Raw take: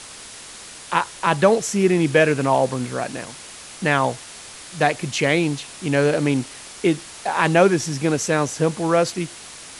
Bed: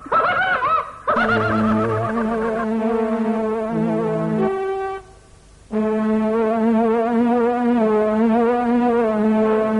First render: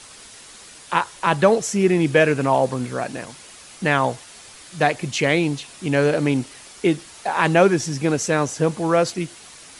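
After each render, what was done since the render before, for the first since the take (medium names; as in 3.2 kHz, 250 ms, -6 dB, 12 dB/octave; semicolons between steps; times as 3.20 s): noise reduction 6 dB, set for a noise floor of -40 dBFS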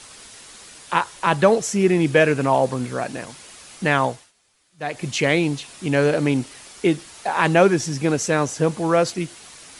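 4.03–5.07 s: dip -21 dB, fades 0.29 s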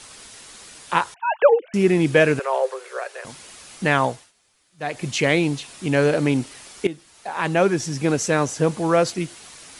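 1.14–1.74 s: formants replaced by sine waves; 2.39–3.25 s: rippled Chebyshev high-pass 380 Hz, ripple 6 dB; 6.87–8.11 s: fade in, from -15 dB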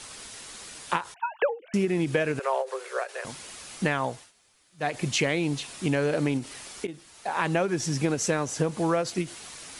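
compression 12:1, threshold -21 dBFS, peak gain reduction 13.5 dB; endings held to a fixed fall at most 230 dB/s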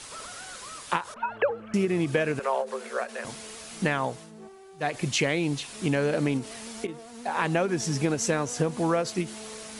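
add bed -27 dB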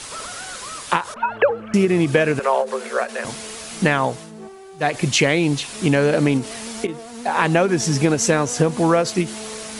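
trim +8.5 dB; peak limiter -2 dBFS, peak gain reduction 1.5 dB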